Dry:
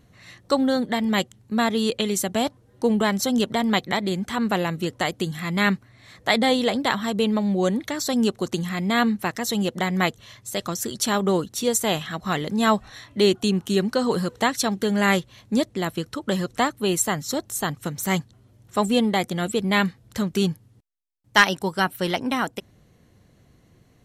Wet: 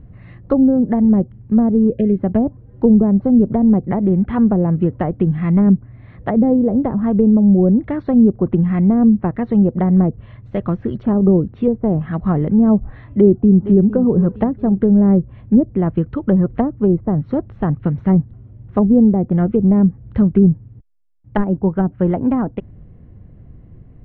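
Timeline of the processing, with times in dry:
1.9–2.19 spectral gain 700–1600 Hz -27 dB
13.11–13.85 echo throw 0.46 s, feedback 35%, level -14.5 dB
whole clip: treble ducked by the level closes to 510 Hz, closed at -18 dBFS; LPF 2800 Hz 24 dB/oct; tilt -4.5 dB/oct; gain +1.5 dB

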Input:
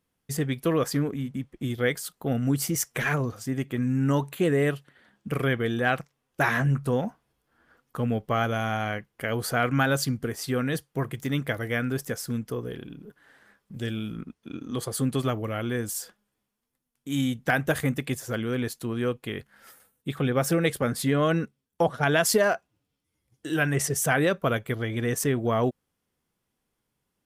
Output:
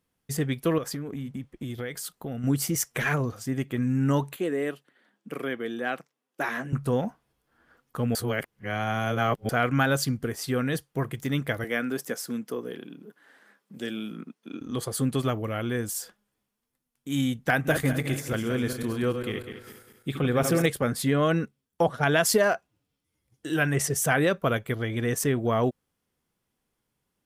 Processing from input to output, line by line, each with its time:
0.78–2.44 compressor, threshold -30 dBFS
4.36–6.73 ladder high-pass 190 Hz, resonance 25%
8.15–9.49 reverse
11.64–14.61 HPF 190 Hz 24 dB/oct
17.53–20.66 regenerating reverse delay 0.1 s, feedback 60%, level -7 dB

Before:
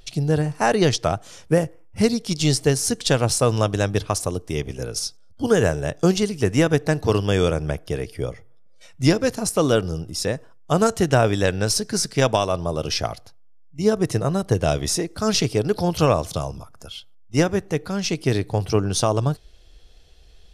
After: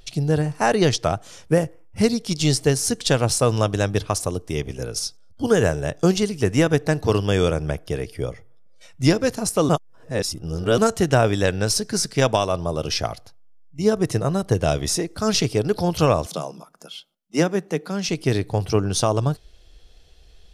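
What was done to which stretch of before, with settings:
9.69–10.78 reverse
16.26–18.09 elliptic high-pass 160 Hz

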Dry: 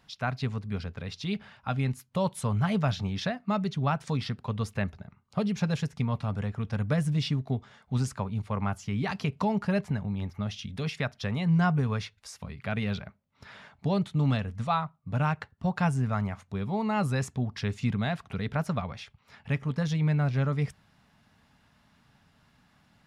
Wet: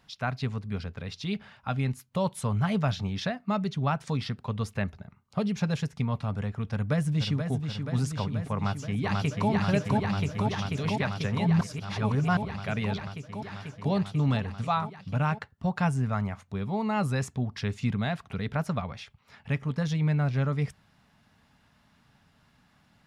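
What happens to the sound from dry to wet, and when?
6.71–7.51 echo throw 0.48 s, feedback 75%, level -6.5 dB
8.55–9.5 echo throw 0.49 s, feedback 85%, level -1 dB
11.61–12.37 reverse

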